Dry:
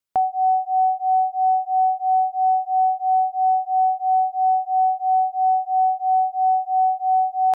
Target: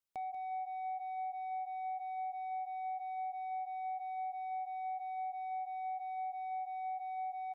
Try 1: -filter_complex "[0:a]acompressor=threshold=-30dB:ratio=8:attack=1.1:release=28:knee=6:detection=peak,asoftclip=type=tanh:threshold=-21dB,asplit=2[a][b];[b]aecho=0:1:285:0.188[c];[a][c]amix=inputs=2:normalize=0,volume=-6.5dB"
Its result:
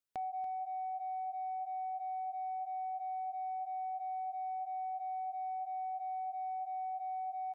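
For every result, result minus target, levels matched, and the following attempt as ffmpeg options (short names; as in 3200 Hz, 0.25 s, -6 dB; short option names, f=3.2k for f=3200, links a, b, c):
echo 97 ms late; soft clip: distortion -14 dB
-filter_complex "[0:a]acompressor=threshold=-30dB:ratio=8:attack=1.1:release=28:knee=6:detection=peak,asoftclip=type=tanh:threshold=-21dB,asplit=2[a][b];[b]aecho=0:1:188:0.188[c];[a][c]amix=inputs=2:normalize=0,volume=-6.5dB"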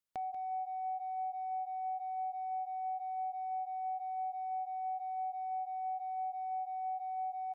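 soft clip: distortion -14 dB
-filter_complex "[0:a]acompressor=threshold=-30dB:ratio=8:attack=1.1:release=28:knee=6:detection=peak,asoftclip=type=tanh:threshold=-29dB,asplit=2[a][b];[b]aecho=0:1:188:0.188[c];[a][c]amix=inputs=2:normalize=0,volume=-6.5dB"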